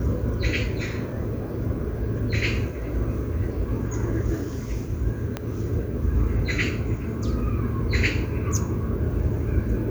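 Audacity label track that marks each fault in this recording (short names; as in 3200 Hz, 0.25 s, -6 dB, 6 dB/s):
5.370000	5.370000	pop -13 dBFS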